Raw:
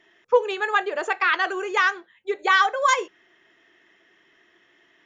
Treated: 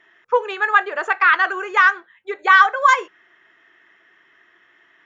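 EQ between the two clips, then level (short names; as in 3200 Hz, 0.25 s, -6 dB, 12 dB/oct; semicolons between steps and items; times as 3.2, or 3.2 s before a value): bell 81 Hz +4.5 dB 2.8 oct; bell 1400 Hz +13 dB 1.8 oct; -5.0 dB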